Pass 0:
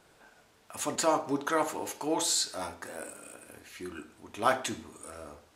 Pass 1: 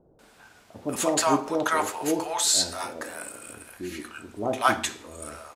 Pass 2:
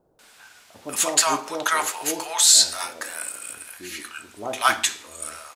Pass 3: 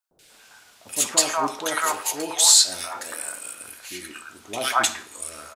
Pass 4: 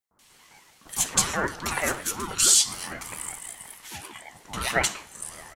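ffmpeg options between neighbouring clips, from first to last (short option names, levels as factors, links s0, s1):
-filter_complex "[0:a]acrossover=split=650[s0][s1];[s1]adelay=190[s2];[s0][s2]amix=inputs=2:normalize=0,volume=2.11"
-af "tiltshelf=f=890:g=-8.5"
-filter_complex "[0:a]acrossover=split=1800[s0][s1];[s0]adelay=110[s2];[s2][s1]amix=inputs=2:normalize=0"
-af "bandreject=f=4300:w=7.8,aeval=exprs='val(0)*sin(2*PI*580*n/s+580*0.25/5.4*sin(2*PI*5.4*n/s))':c=same"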